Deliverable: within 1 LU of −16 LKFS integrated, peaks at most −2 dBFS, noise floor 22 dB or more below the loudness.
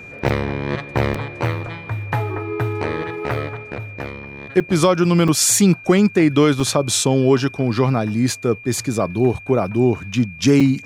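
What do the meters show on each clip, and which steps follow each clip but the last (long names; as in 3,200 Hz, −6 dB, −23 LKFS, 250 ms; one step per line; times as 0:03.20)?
number of dropouts 6; longest dropout 4.8 ms; interfering tone 2,400 Hz; level of the tone −36 dBFS; integrated loudness −18.5 LKFS; sample peak −3.0 dBFS; target loudness −16.0 LKFS
→ repair the gap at 0:00.29/0:01.14/0:04.60/0:05.28/0:06.60/0:10.60, 4.8 ms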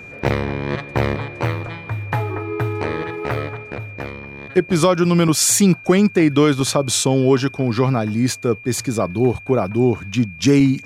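number of dropouts 0; interfering tone 2,400 Hz; level of the tone −36 dBFS
→ notch filter 2,400 Hz, Q 30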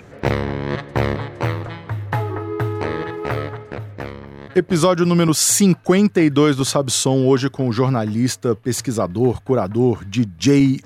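interfering tone none found; integrated loudness −18.5 LKFS; sample peak −3.0 dBFS; target loudness −16.0 LKFS
→ level +2.5 dB
brickwall limiter −2 dBFS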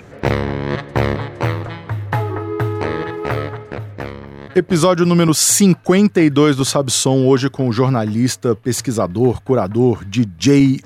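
integrated loudness −16.0 LKFS; sample peak −2.0 dBFS; background noise floor −39 dBFS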